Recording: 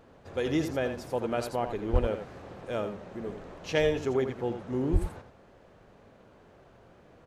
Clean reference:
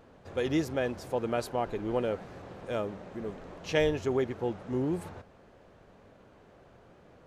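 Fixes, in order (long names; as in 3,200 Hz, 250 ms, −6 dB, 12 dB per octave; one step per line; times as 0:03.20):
clipped peaks rebuilt −14 dBFS
high-pass at the plosives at 0:01.92/0:04.92
echo removal 83 ms −8.5 dB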